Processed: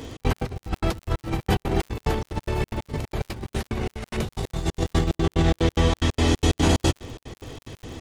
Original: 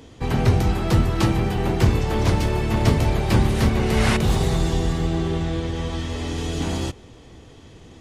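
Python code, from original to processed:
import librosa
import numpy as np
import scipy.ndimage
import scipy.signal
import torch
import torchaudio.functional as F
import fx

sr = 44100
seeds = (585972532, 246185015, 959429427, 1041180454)

y = fx.peak_eq(x, sr, hz=180.0, db=-5.0, octaves=0.36)
y = fx.over_compress(y, sr, threshold_db=-25.0, ratio=-0.5)
y = fx.step_gate(y, sr, bpm=182, pattern='xx.x.xx.x.', floor_db=-60.0, edge_ms=4.5)
y = fx.dmg_crackle(y, sr, seeds[0], per_s=66.0, level_db=-39.0)
y = y * librosa.db_to_amplitude(3.5)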